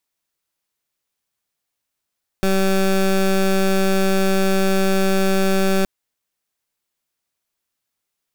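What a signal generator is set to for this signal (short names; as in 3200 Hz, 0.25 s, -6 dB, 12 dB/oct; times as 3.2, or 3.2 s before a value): pulse 192 Hz, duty 19% -16.5 dBFS 3.42 s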